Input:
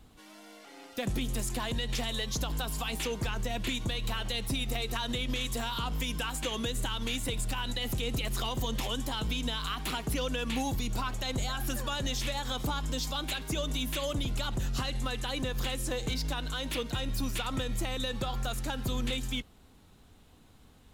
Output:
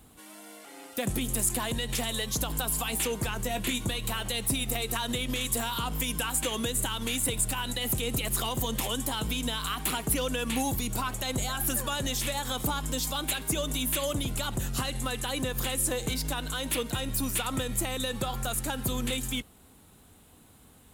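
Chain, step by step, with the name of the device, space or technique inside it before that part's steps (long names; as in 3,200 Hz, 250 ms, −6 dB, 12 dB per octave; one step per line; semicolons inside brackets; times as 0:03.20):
budget condenser microphone (high-pass filter 72 Hz 6 dB per octave; high shelf with overshoot 7,100 Hz +8 dB, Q 1.5)
0:03.42–0:03.98: double-tracking delay 20 ms −11 dB
level +3 dB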